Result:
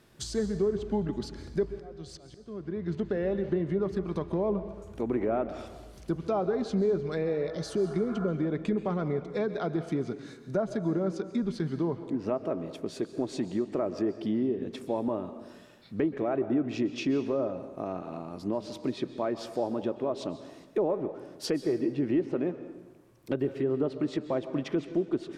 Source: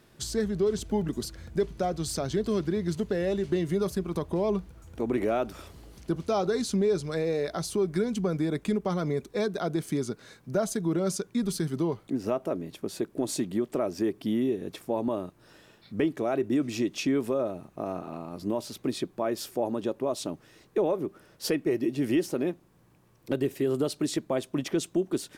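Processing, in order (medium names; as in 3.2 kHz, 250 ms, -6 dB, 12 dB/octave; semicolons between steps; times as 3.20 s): 7.28–8.25 s: spectral replace 660–1800 Hz both; low-pass that closes with the level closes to 1.4 kHz, closed at -22.5 dBFS; 1.70–2.90 s: slow attack 698 ms; plate-style reverb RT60 1.2 s, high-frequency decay 0.8×, pre-delay 115 ms, DRR 11 dB; trim -1.5 dB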